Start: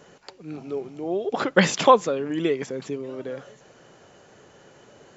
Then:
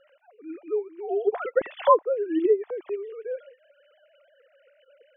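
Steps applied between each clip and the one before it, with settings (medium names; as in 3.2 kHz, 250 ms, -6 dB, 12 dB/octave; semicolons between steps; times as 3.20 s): formants replaced by sine waves; low-pass that closes with the level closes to 820 Hz, closed at -17 dBFS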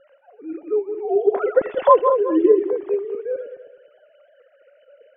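backward echo that repeats 105 ms, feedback 53%, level -7.5 dB; low-pass 1.1 kHz 6 dB/octave; trim +7 dB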